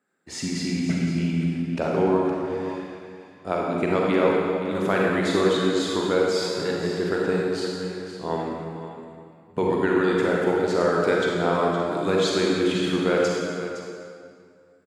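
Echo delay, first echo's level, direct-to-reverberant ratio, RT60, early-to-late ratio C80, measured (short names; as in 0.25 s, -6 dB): 0.514 s, -11.5 dB, -3.5 dB, 2.3 s, 0.0 dB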